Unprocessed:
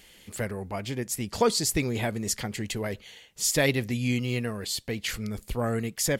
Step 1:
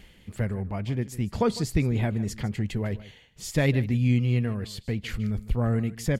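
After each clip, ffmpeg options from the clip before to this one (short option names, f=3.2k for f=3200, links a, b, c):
-af "areverse,acompressor=mode=upward:threshold=-40dB:ratio=2.5,areverse,bass=f=250:g=11,treble=f=4k:g=-10,aecho=1:1:153:0.133,volume=-3dB"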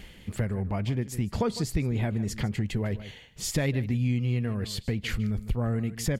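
-af "acompressor=threshold=-31dB:ratio=3,volume=5dB"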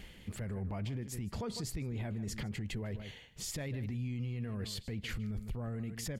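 -af "alimiter=level_in=2.5dB:limit=-24dB:level=0:latency=1:release=21,volume=-2.5dB,volume=-4.5dB"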